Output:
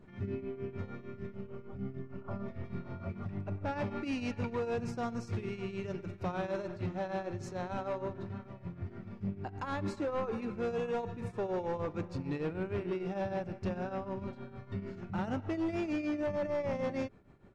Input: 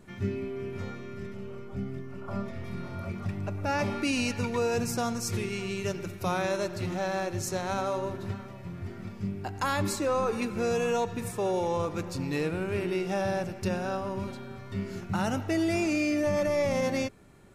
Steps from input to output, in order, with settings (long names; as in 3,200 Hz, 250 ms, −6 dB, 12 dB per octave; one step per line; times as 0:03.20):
shaped tremolo triangle 6.6 Hz, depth 80%
gain into a clipping stage and back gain 28.5 dB
head-to-tape spacing loss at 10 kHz 24 dB